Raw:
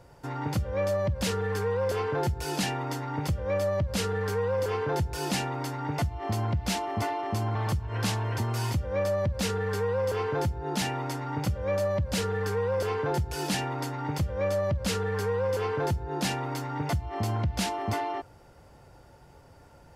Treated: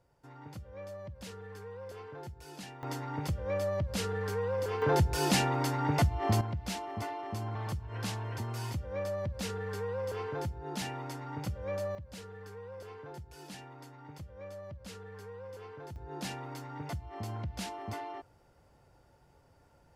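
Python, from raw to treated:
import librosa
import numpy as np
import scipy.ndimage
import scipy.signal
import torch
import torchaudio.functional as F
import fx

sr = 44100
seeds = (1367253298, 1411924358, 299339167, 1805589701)

y = fx.gain(x, sr, db=fx.steps((0.0, -17.0), (2.83, -5.0), (4.82, 2.0), (6.41, -8.0), (11.95, -18.0), (15.96, -10.0)))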